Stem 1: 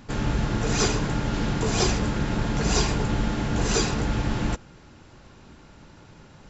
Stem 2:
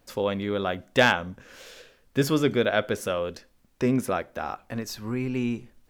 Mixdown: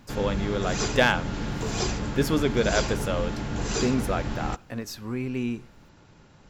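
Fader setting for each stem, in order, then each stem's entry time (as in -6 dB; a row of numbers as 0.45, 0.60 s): -5.0, -1.5 dB; 0.00, 0.00 s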